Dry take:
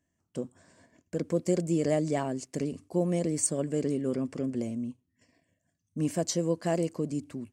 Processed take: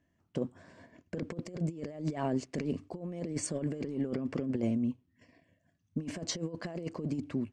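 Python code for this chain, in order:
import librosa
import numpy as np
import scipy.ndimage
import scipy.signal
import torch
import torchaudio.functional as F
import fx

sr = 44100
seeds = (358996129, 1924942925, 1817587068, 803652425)

y = scipy.signal.sosfilt(scipy.signal.butter(2, 3700.0, 'lowpass', fs=sr, output='sos'), x)
y = fx.over_compress(y, sr, threshold_db=-33.0, ratio=-0.5)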